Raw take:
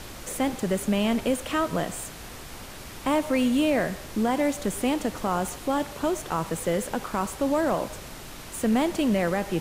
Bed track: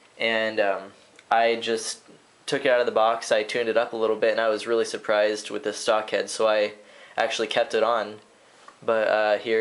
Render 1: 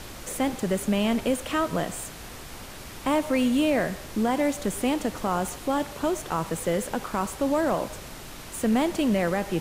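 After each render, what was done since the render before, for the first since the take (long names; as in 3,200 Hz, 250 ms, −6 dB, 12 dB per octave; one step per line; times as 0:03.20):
no processing that can be heard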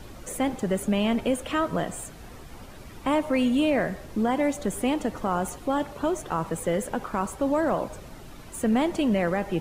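broadband denoise 10 dB, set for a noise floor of −41 dBFS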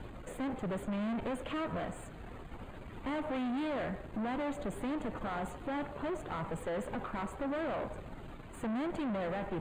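tube saturation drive 33 dB, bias 0.6
moving average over 8 samples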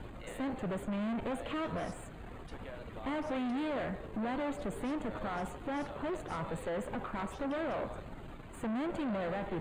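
mix in bed track −28.5 dB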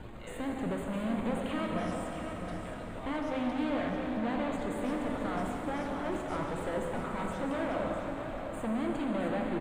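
single-tap delay 665 ms −9 dB
dense smooth reverb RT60 4.7 s, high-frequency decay 0.75×, DRR 0.5 dB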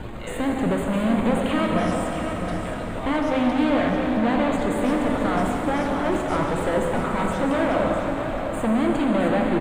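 level +11.5 dB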